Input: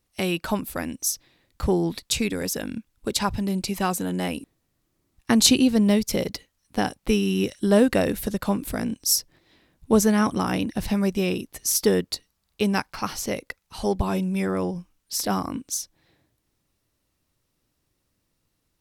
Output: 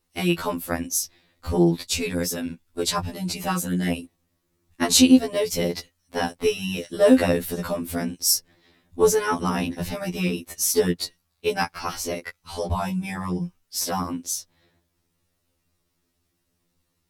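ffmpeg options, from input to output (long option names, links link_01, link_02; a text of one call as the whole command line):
ffmpeg -i in.wav -af "atempo=1.1,afftfilt=real='re*2*eq(mod(b,4),0)':imag='im*2*eq(mod(b,4),0)':win_size=2048:overlap=0.75,volume=3dB" out.wav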